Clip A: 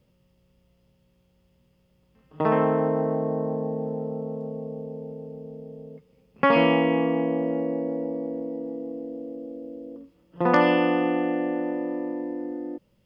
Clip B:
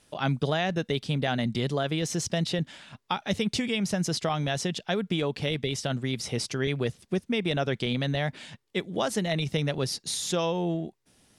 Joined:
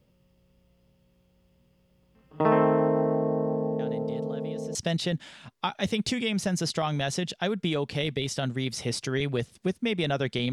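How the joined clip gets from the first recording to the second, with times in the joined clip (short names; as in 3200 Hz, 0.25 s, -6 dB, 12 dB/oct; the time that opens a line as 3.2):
clip A
3.79 add clip B from 1.26 s 0.96 s -17.5 dB
4.75 switch to clip B from 2.22 s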